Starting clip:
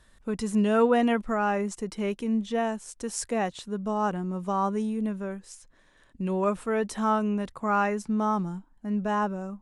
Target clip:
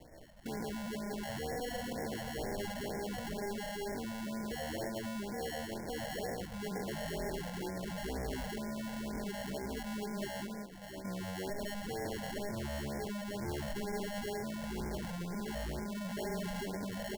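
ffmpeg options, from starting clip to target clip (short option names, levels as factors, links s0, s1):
-filter_complex "[0:a]aecho=1:1:74|134|470|509|848:0.596|0.211|0.2|0.376|0.106,acompressor=mode=upward:threshold=0.0112:ratio=2.5,agate=range=0.0224:threshold=0.0126:ratio=3:detection=peak,bandreject=f=50:t=h:w=6,bandreject=f=100:t=h:w=6,bandreject=f=150:t=h:w=6,bandreject=f=200:t=h:w=6,bandreject=f=250:t=h:w=6,asoftclip=type=hard:threshold=0.0158,asplit=2[s0][s1];[s1]highpass=f=720:p=1,volume=6.31,asoftclip=type=tanh:threshold=0.211[s2];[s0][s2]amix=inputs=2:normalize=0,lowpass=f=2400:p=1,volume=0.501,alimiter=level_in=4.22:limit=0.0631:level=0:latency=1:release=35,volume=0.237,bass=f=250:g=2,treble=f=4000:g=-9,atempo=0.56,acrusher=samples=36:mix=1:aa=0.000001,asoftclip=type=tanh:threshold=0.01,afftfilt=real='re*(1-between(b*sr/1024,310*pow(3500/310,0.5+0.5*sin(2*PI*2.1*pts/sr))/1.41,310*pow(3500/310,0.5+0.5*sin(2*PI*2.1*pts/sr))*1.41))':imag='im*(1-between(b*sr/1024,310*pow(3500/310,0.5+0.5*sin(2*PI*2.1*pts/sr))/1.41,310*pow(3500/310,0.5+0.5*sin(2*PI*2.1*pts/sr))*1.41))':win_size=1024:overlap=0.75,volume=2.24"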